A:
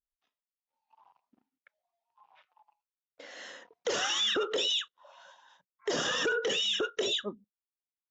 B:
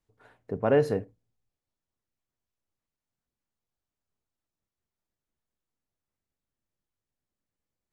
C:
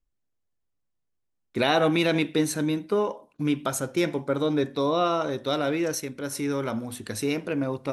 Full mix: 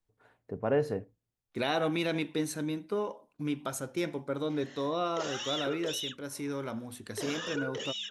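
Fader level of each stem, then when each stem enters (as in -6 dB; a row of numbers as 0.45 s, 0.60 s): -8.0 dB, -5.5 dB, -8.0 dB; 1.30 s, 0.00 s, 0.00 s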